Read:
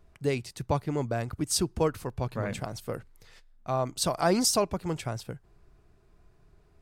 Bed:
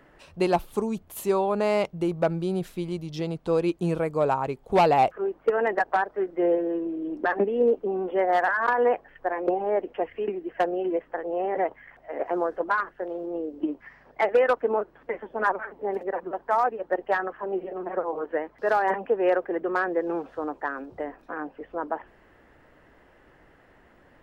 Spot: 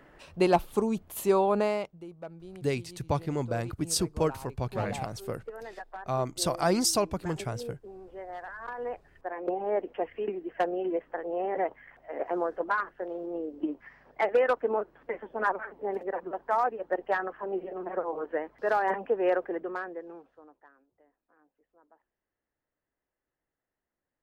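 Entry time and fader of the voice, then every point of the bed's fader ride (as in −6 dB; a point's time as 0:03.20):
2.40 s, −1.0 dB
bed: 0:01.58 0 dB
0:02.05 −18.5 dB
0:08.46 −18.5 dB
0:09.73 −3.5 dB
0:19.47 −3.5 dB
0:20.92 −33 dB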